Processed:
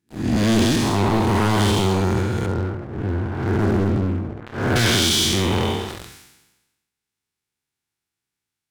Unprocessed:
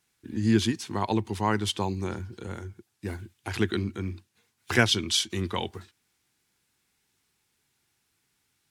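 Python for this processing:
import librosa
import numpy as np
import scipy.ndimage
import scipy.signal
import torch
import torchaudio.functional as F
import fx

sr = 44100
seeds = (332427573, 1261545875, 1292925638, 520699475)

y = fx.spec_blur(x, sr, span_ms=281.0)
y = fx.lowpass(y, sr, hz=1400.0, slope=24, at=(2.46, 4.76))
y = fx.leveller(y, sr, passes=5)
y = fx.room_early_taps(y, sr, ms=(50, 68), db=(-15.5, -14.5))
y = fx.sustainer(y, sr, db_per_s=53.0)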